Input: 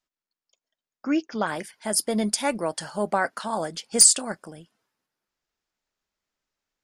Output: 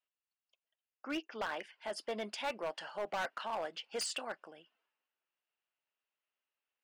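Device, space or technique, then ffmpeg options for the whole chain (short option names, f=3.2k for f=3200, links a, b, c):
megaphone: -af "highpass=480,lowpass=2.9k,equalizer=f=2.8k:t=o:w=0.32:g=11.5,asoftclip=type=hard:threshold=-25dB,volume=-7dB"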